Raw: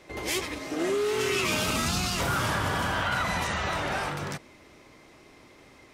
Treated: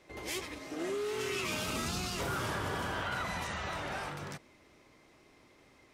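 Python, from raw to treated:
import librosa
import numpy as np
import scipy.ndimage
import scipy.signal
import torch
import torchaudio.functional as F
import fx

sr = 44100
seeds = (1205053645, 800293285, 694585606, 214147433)

y = fx.peak_eq(x, sr, hz=400.0, db=6.5, octaves=0.61, at=(1.71, 3.27))
y = y * 10.0 ** (-8.5 / 20.0)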